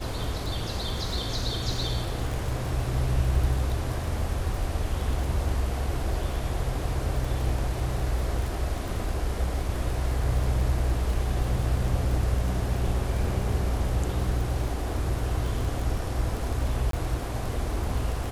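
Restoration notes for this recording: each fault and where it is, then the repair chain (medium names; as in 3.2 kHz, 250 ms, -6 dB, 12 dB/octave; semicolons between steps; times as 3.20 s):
crackle 24 per s -30 dBFS
16.91–16.93 s: dropout 23 ms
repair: de-click; interpolate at 16.91 s, 23 ms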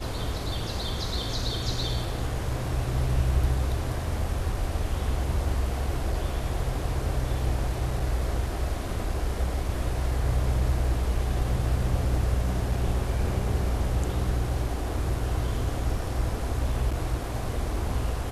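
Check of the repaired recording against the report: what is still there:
nothing left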